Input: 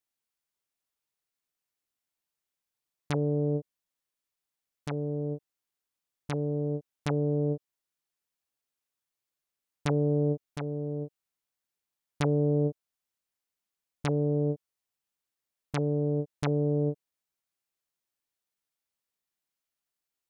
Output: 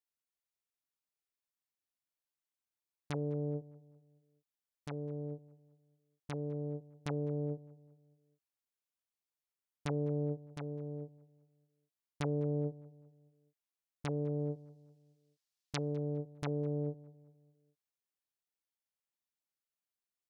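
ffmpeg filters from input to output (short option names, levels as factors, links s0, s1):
-filter_complex "[0:a]asettb=1/sr,asplit=3[s0][s1][s2];[s0]atrim=end=14.394[s3];[s1]atrim=start=14.39:end=15.92,asetpts=PTS-STARTPTS,afade=t=in:d=0.004:c=qsin,afade=t=out:st=1.526:d=0.004:c=qsin,equalizer=f=4900:w=0.69:g=12[s4];[s2]atrim=start=15.916[s5];[s3][s4]acrossfade=d=0.004:c1=hsin:c2=qsin[s6];[s6][s5]acrossfade=d=0.004:c1=qsin:c2=hsin,asplit=2[s7][s8];[s8]adelay=203,lowpass=f=1700:p=1,volume=0.119,asplit=2[s9][s10];[s10]adelay=203,lowpass=f=1700:p=1,volume=0.46,asplit=2[s11][s12];[s12]adelay=203,lowpass=f=1700:p=1,volume=0.46,asplit=2[s13][s14];[s14]adelay=203,lowpass=f=1700:p=1,volume=0.46[s15];[s7][s9][s11][s13][s15]amix=inputs=5:normalize=0,volume=0.376"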